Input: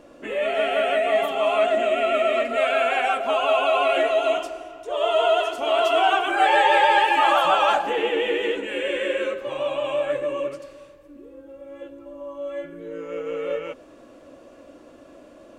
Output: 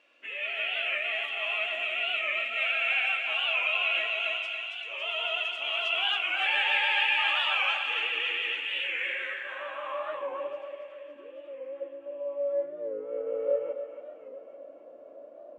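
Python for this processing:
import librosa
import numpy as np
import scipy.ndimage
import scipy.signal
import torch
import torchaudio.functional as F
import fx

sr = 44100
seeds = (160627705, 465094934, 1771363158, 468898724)

y = fx.echo_thinned(x, sr, ms=279, feedback_pct=69, hz=980.0, wet_db=-5.0)
y = fx.filter_sweep_bandpass(y, sr, from_hz=2600.0, to_hz=580.0, start_s=8.86, end_s=11.0, q=3.6)
y = fx.echo_feedback(y, sr, ms=845, feedback_pct=53, wet_db=-23.0)
y = fx.record_warp(y, sr, rpm=45.0, depth_cents=100.0)
y = y * 10.0 ** (2.0 / 20.0)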